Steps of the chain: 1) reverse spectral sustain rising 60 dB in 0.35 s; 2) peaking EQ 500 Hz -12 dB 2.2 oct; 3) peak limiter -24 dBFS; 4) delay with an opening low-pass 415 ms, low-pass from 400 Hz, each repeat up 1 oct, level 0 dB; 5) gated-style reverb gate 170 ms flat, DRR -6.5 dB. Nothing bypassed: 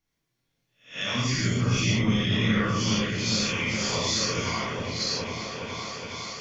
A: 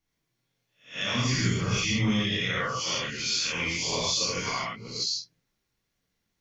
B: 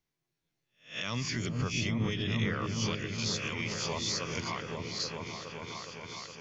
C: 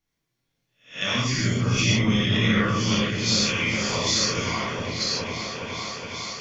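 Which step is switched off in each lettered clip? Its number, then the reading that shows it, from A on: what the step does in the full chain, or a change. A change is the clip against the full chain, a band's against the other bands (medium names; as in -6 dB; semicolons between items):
4, echo-to-direct 8.5 dB to 6.5 dB; 5, echo-to-direct 8.5 dB to -3.0 dB; 3, mean gain reduction 1.5 dB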